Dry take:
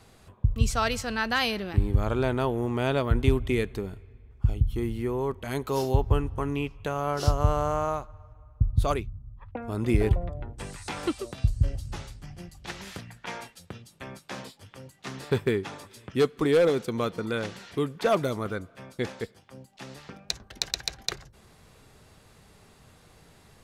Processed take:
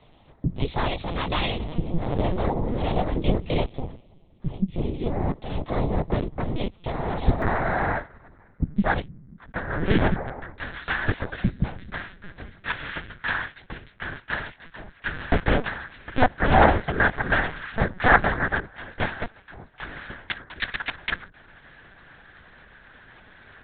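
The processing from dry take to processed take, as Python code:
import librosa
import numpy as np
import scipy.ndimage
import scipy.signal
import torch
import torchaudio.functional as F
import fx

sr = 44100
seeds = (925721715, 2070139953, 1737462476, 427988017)

y = fx.noise_vocoder(x, sr, seeds[0], bands=6)
y = fx.lpc_vocoder(y, sr, seeds[1], excitation='pitch_kept', order=8)
y = fx.peak_eq(y, sr, hz=1600.0, db=fx.steps((0.0, -11.0), (7.42, 2.5), (9.51, 15.0)), octaves=0.69)
y = y * 10.0 ** (4.0 / 20.0)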